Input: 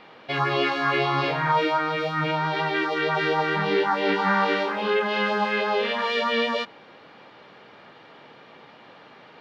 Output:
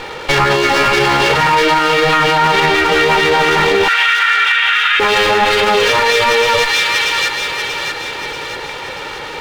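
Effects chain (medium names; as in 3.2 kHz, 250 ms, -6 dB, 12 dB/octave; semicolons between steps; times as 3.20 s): comb filter that takes the minimum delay 2.2 ms; 3.88–5.00 s: Chebyshev band-pass 1.3–3.6 kHz, order 4; compression, threshold -26 dBFS, peak gain reduction 8.5 dB; on a send: feedback echo behind a high-pass 636 ms, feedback 50%, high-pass 1.7 kHz, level -3.5 dB; on the sum: loudness maximiser +25.5 dB; trim -3 dB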